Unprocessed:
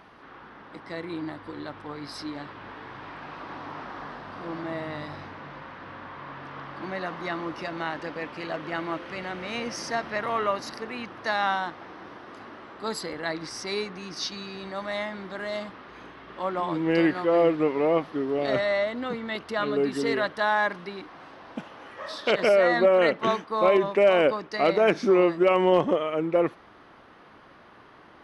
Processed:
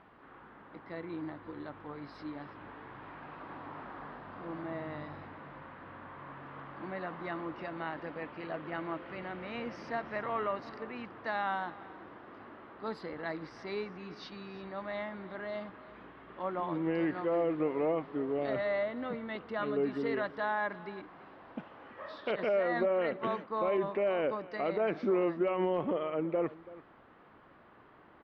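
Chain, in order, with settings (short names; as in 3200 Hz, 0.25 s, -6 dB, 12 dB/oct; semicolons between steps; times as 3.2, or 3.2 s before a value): limiter -15.5 dBFS, peak gain reduction 6 dB; air absorption 350 m; on a send: echo 0.332 s -18.5 dB; on the sum: gain -5.5 dB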